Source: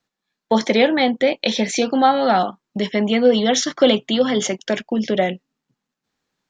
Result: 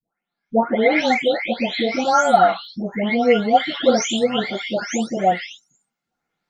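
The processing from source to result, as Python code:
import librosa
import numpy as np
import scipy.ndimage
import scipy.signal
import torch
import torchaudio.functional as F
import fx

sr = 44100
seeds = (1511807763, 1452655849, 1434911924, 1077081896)

y = fx.spec_delay(x, sr, highs='late', ms=597)
y = fx.wow_flutter(y, sr, seeds[0], rate_hz=2.1, depth_cents=79.0)
y = fx.small_body(y, sr, hz=(750.0, 1400.0, 2100.0), ring_ms=35, db=12)
y = F.gain(torch.from_numpy(y), -1.5).numpy()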